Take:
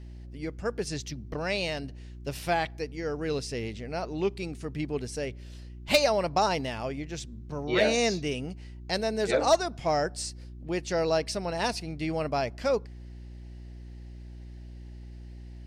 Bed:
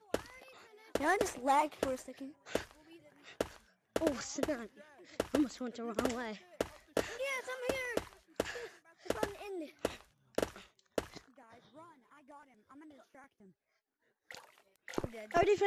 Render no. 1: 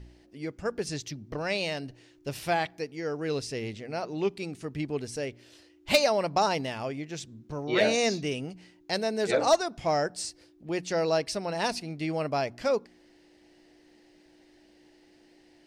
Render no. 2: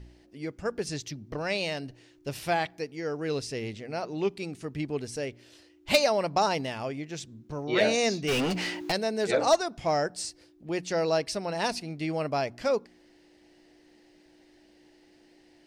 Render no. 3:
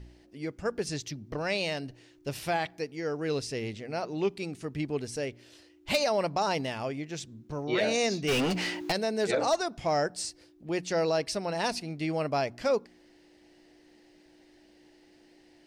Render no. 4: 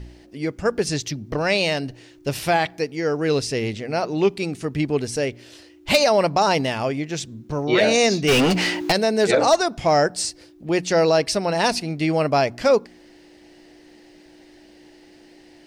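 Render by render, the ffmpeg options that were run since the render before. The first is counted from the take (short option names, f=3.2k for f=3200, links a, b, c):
-af "bandreject=f=60:t=h:w=4,bandreject=f=120:t=h:w=4,bandreject=f=180:t=h:w=4,bandreject=f=240:t=h:w=4"
-filter_complex "[0:a]asplit=3[a][b][c];[a]afade=t=out:st=8.27:d=0.02[d];[b]asplit=2[e][f];[f]highpass=f=720:p=1,volume=36dB,asoftclip=type=tanh:threshold=-19.5dB[g];[e][g]amix=inputs=2:normalize=0,lowpass=f=4.6k:p=1,volume=-6dB,afade=t=in:st=8.27:d=0.02,afade=t=out:st=8.91:d=0.02[h];[c]afade=t=in:st=8.91:d=0.02[i];[d][h][i]amix=inputs=3:normalize=0"
-af "alimiter=limit=-18.5dB:level=0:latency=1:release=39"
-af "volume=10dB"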